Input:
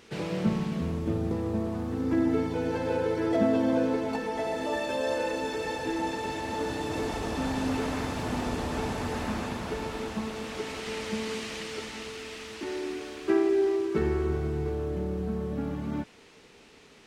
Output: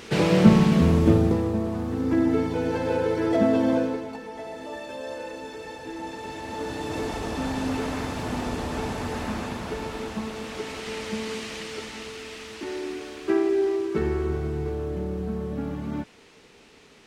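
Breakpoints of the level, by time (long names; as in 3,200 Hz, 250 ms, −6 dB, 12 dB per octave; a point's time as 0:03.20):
0:01.08 +12 dB
0:01.56 +3.5 dB
0:03.73 +3.5 dB
0:04.14 −6 dB
0:05.85 −6 dB
0:06.94 +1.5 dB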